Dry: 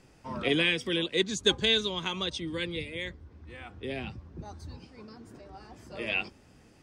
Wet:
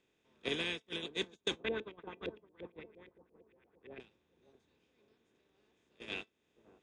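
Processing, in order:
compressor on every frequency bin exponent 0.4
noise gate −20 dBFS, range −45 dB
downward compressor 2 to 1, threshold −47 dBFS, peak gain reduction 16 dB
0:01.57–0:04.00: auto-filter low-pass saw up 8.7 Hz 360–2,500 Hz
tuned comb filter 220 Hz, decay 0.17 s, harmonics all, mix 30%
bucket-brigade delay 565 ms, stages 4,096, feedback 40%, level −16 dB
level +4 dB

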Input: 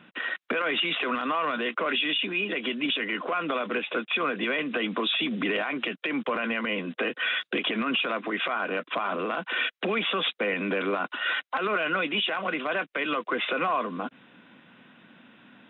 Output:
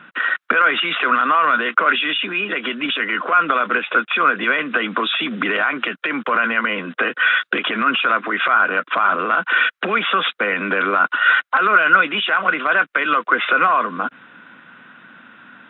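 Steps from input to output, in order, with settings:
parametric band 1,400 Hz +13.5 dB 0.86 octaves
level +3.5 dB

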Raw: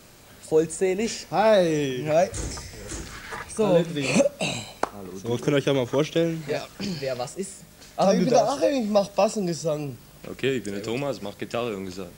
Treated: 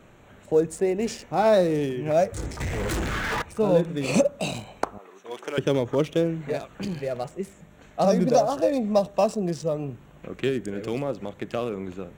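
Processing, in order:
adaptive Wiener filter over 9 samples
0:04.98–0:05.58: high-pass filter 720 Hz 12 dB per octave
dynamic equaliser 2,400 Hz, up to −4 dB, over −40 dBFS, Q 0.81
0:02.60–0:03.42: leveller curve on the samples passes 5
0:06.34–0:07.00: notch filter 5,300 Hz, Q 10

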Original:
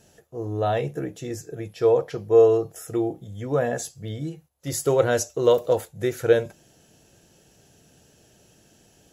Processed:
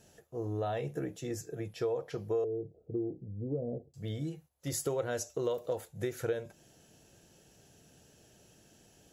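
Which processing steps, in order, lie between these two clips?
0:02.44–0:03.94: inverse Chebyshev low-pass filter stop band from 2,100 Hz, stop band 70 dB
downward compressor 4 to 1, threshold −27 dBFS, peak gain reduction 13.5 dB
0:01.16–0:01.74: multiband upward and downward expander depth 40%
level −4.5 dB

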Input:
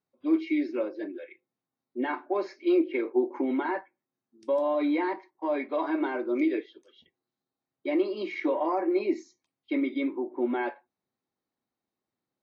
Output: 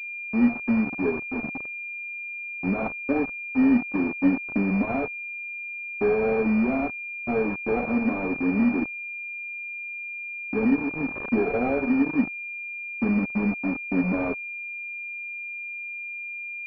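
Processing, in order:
samples in bit-reversed order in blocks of 16 samples
in parallel at −2.5 dB: downward compressor 4 to 1, threshold −34 dBFS, peak gain reduction 13 dB
on the sum: centre clipping without the shift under −30 dBFS
change of speed 0.746×
switching amplifier with a slow clock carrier 2,400 Hz
level +2 dB

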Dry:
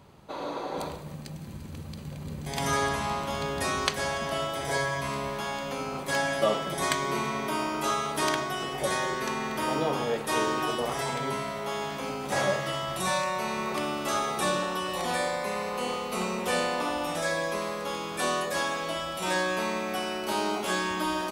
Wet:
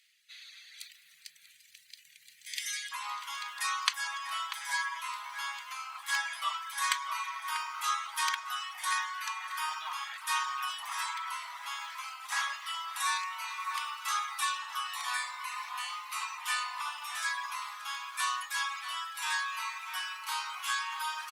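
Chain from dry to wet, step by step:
reverb reduction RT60 1 s
elliptic high-pass filter 1,900 Hz, stop band 50 dB, from 0:02.91 1,000 Hz
slap from a distant wall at 110 metres, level −7 dB
Opus 48 kbit/s 48,000 Hz

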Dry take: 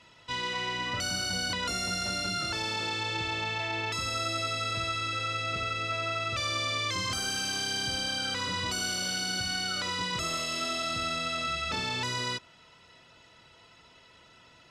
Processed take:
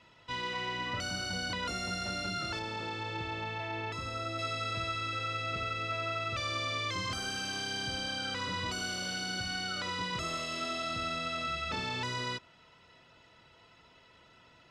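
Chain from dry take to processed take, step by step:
low-pass filter 3,200 Hz 6 dB per octave, from 0:02.59 1,500 Hz, from 0:04.39 3,500 Hz
level −2 dB

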